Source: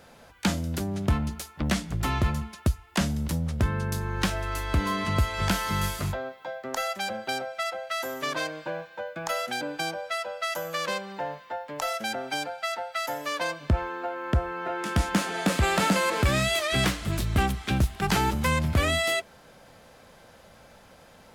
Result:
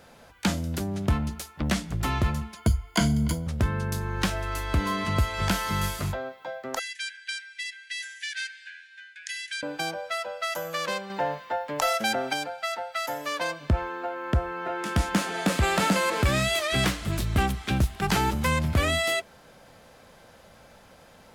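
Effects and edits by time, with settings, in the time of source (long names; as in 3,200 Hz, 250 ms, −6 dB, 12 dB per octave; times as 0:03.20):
0:02.56–0:03.47: EQ curve with evenly spaced ripples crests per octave 1.8, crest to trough 14 dB
0:06.79–0:09.63: linear-phase brick-wall band-pass 1,500–11,000 Hz
0:11.10–0:12.33: clip gain +5 dB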